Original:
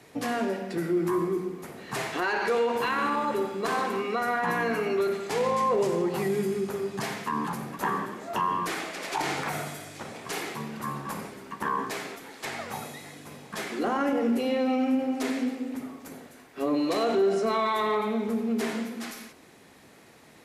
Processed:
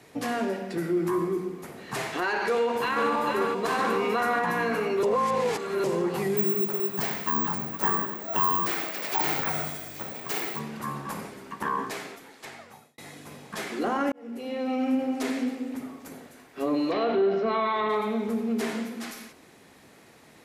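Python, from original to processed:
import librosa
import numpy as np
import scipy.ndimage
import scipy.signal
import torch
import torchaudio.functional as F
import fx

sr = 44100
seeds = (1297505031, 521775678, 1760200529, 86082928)

y = fx.echo_throw(x, sr, start_s=2.52, length_s=0.58, ms=440, feedback_pct=75, wet_db=-4.5)
y = fx.env_flatten(y, sr, amount_pct=70, at=(3.79, 4.39))
y = fx.resample_bad(y, sr, factor=2, down='filtered', up='zero_stuff', at=(6.37, 10.59))
y = fx.lowpass(y, sr, hz=3700.0, slope=24, at=(16.9, 17.88), fade=0.02)
y = fx.edit(y, sr, fx.reverse_span(start_s=5.03, length_s=0.81),
    fx.fade_out_span(start_s=11.79, length_s=1.19),
    fx.fade_in_span(start_s=14.12, length_s=0.81), tone=tone)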